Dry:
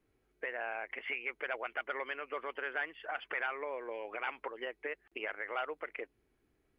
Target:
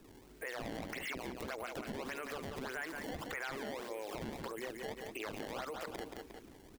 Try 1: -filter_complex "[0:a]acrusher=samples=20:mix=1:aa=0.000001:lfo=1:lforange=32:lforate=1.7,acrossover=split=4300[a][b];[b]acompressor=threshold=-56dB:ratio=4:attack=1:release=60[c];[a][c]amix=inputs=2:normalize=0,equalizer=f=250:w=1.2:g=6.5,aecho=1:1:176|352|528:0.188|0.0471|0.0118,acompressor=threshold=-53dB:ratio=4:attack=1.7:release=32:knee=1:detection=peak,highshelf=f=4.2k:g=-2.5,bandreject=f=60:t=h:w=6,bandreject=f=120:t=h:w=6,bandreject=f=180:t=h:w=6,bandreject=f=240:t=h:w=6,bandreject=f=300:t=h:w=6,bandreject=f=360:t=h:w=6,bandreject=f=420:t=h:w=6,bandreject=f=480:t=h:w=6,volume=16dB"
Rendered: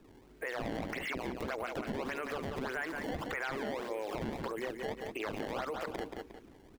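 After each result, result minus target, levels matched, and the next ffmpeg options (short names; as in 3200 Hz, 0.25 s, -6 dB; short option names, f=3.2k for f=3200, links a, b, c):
8000 Hz band -6.5 dB; compressor: peak gain reduction -5 dB
-filter_complex "[0:a]acrusher=samples=20:mix=1:aa=0.000001:lfo=1:lforange=32:lforate=1.7,acrossover=split=4300[a][b];[b]acompressor=threshold=-56dB:ratio=4:attack=1:release=60[c];[a][c]amix=inputs=2:normalize=0,equalizer=f=250:w=1.2:g=6.5,aecho=1:1:176|352|528:0.188|0.0471|0.0118,acompressor=threshold=-53dB:ratio=4:attack=1.7:release=32:knee=1:detection=peak,highshelf=f=4.2k:g=7,bandreject=f=60:t=h:w=6,bandreject=f=120:t=h:w=6,bandreject=f=180:t=h:w=6,bandreject=f=240:t=h:w=6,bandreject=f=300:t=h:w=6,bandreject=f=360:t=h:w=6,bandreject=f=420:t=h:w=6,bandreject=f=480:t=h:w=6,volume=16dB"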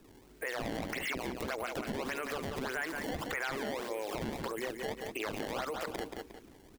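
compressor: peak gain reduction -5 dB
-filter_complex "[0:a]acrusher=samples=20:mix=1:aa=0.000001:lfo=1:lforange=32:lforate=1.7,acrossover=split=4300[a][b];[b]acompressor=threshold=-56dB:ratio=4:attack=1:release=60[c];[a][c]amix=inputs=2:normalize=0,equalizer=f=250:w=1.2:g=6.5,aecho=1:1:176|352|528:0.188|0.0471|0.0118,acompressor=threshold=-60dB:ratio=4:attack=1.7:release=32:knee=1:detection=peak,highshelf=f=4.2k:g=7,bandreject=f=60:t=h:w=6,bandreject=f=120:t=h:w=6,bandreject=f=180:t=h:w=6,bandreject=f=240:t=h:w=6,bandreject=f=300:t=h:w=6,bandreject=f=360:t=h:w=6,bandreject=f=420:t=h:w=6,bandreject=f=480:t=h:w=6,volume=16dB"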